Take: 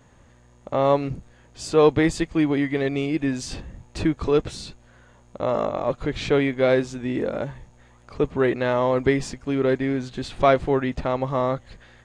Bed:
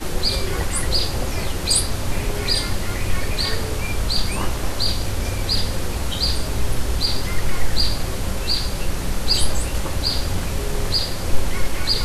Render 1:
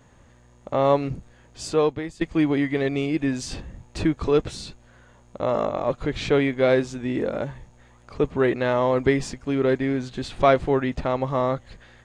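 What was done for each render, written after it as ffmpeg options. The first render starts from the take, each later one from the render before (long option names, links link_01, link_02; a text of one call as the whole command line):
ffmpeg -i in.wav -filter_complex "[0:a]asplit=2[link_01][link_02];[link_01]atrim=end=2.21,asetpts=PTS-STARTPTS,afade=type=out:start_time=1.67:duration=0.54:curve=qua:silence=0.158489[link_03];[link_02]atrim=start=2.21,asetpts=PTS-STARTPTS,afade=type=in:duration=0.004:curve=hsin:silence=0.158489[link_04];[link_03][link_04]concat=n=2:v=0:a=1" out.wav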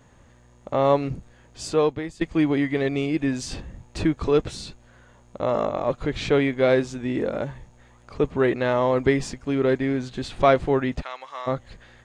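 ffmpeg -i in.wav -filter_complex "[0:a]asplit=3[link_01][link_02][link_03];[link_01]afade=type=out:start_time=11.01:duration=0.02[link_04];[link_02]highpass=1500,afade=type=in:start_time=11.01:duration=0.02,afade=type=out:start_time=11.46:duration=0.02[link_05];[link_03]afade=type=in:start_time=11.46:duration=0.02[link_06];[link_04][link_05][link_06]amix=inputs=3:normalize=0" out.wav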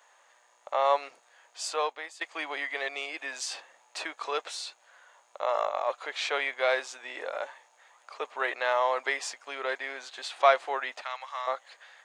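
ffmpeg -i in.wav -af "highpass=frequency=680:width=0.5412,highpass=frequency=680:width=1.3066" out.wav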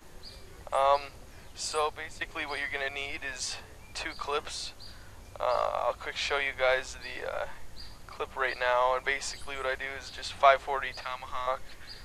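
ffmpeg -i in.wav -i bed.wav -filter_complex "[1:a]volume=-26.5dB[link_01];[0:a][link_01]amix=inputs=2:normalize=0" out.wav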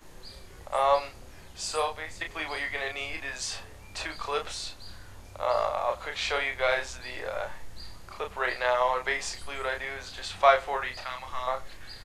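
ffmpeg -i in.wav -filter_complex "[0:a]asplit=2[link_01][link_02];[link_02]adelay=32,volume=-5.5dB[link_03];[link_01][link_03]amix=inputs=2:normalize=0,asplit=2[link_04][link_05];[link_05]adelay=93.29,volume=-23dB,highshelf=frequency=4000:gain=-2.1[link_06];[link_04][link_06]amix=inputs=2:normalize=0" out.wav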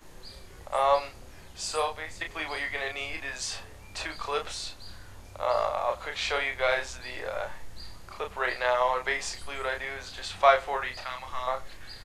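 ffmpeg -i in.wav -af anull out.wav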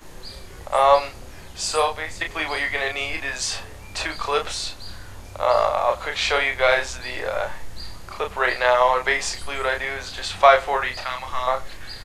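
ffmpeg -i in.wav -af "volume=8dB,alimiter=limit=-2dB:level=0:latency=1" out.wav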